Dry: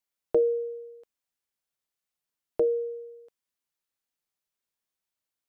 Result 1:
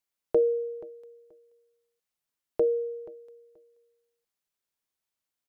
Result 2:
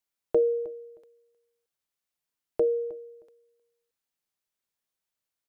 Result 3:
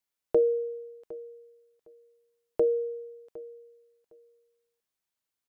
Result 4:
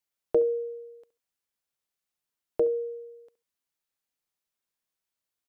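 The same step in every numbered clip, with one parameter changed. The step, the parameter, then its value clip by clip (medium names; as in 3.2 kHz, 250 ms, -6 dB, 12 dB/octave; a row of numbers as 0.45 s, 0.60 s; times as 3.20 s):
feedback delay, time: 480 ms, 312 ms, 759 ms, 69 ms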